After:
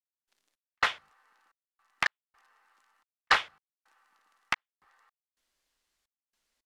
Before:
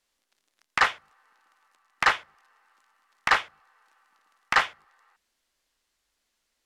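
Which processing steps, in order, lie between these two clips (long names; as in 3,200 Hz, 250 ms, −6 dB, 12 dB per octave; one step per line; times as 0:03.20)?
dynamic equaliser 3,800 Hz, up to +5 dB, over −40 dBFS, Q 1.2
gate pattern "..xx..xxxxx" 109 BPM −60 dB
level −3 dB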